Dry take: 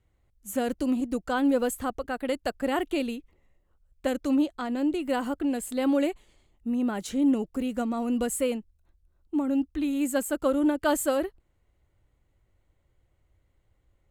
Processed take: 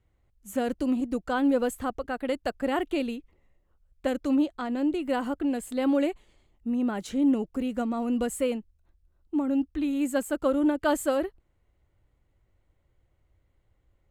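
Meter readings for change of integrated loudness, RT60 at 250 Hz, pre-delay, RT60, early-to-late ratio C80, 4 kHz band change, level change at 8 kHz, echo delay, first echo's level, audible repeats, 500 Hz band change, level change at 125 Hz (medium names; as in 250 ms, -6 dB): 0.0 dB, no reverb, no reverb, no reverb, no reverb, -1.5 dB, -5.0 dB, no echo, no echo, no echo, 0.0 dB, no reading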